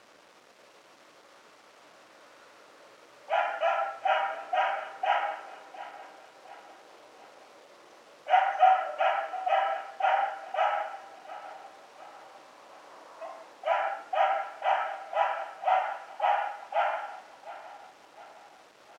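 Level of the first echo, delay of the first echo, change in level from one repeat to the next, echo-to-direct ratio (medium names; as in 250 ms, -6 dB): -16.5 dB, 708 ms, -6.5 dB, -15.5 dB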